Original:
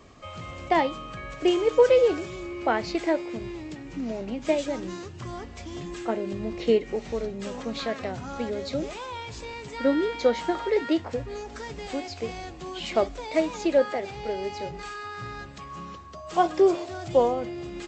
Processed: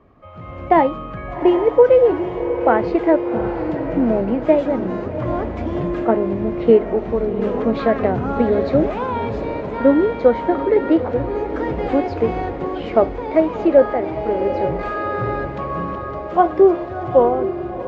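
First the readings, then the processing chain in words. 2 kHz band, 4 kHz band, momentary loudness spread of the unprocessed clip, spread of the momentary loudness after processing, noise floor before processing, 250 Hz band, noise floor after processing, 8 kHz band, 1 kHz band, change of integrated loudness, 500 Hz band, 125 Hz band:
+4.5 dB, n/a, 16 LU, 10 LU, -42 dBFS, +10.5 dB, -30 dBFS, under -15 dB, +9.0 dB, +8.5 dB, +9.0 dB, +12.0 dB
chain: LPF 1400 Hz 12 dB/oct; AGC gain up to 15.5 dB; diffused feedback echo 0.769 s, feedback 63%, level -10.5 dB; gain -1 dB

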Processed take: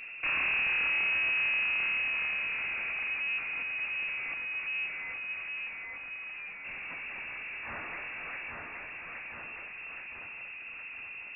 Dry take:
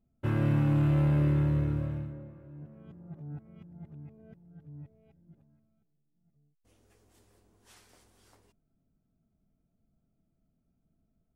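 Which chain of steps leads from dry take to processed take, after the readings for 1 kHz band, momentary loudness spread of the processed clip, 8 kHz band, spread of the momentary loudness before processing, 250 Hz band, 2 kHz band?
+4.0 dB, 15 LU, n/a, 21 LU, -22.5 dB, +22.5 dB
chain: low shelf 370 Hz -7.5 dB; in parallel at -2 dB: compressor, threshold -43 dBFS, peak gain reduction 13.5 dB; on the sum: one-sided clip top -45 dBFS; air absorption 460 m; on a send: thinning echo 0.82 s, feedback 48%, high-pass 250 Hz, level -7.5 dB; on the sum: power-law curve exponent 0.35; inverted band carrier 2700 Hz

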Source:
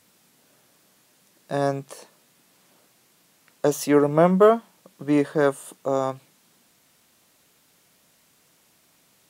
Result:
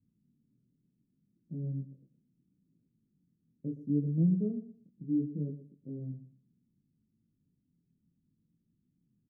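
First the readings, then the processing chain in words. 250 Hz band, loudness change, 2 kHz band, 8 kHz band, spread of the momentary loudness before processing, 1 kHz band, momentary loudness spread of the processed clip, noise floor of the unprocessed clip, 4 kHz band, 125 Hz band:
-8.0 dB, -12.0 dB, under -40 dB, under -40 dB, 14 LU, under -40 dB, 19 LU, -62 dBFS, under -40 dB, -3.0 dB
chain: inverse Chebyshev low-pass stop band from 820 Hz, stop band 60 dB; chorus 0.7 Hz, delay 18 ms, depth 6.7 ms; feedback echo 0.119 s, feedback 22%, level -13 dB

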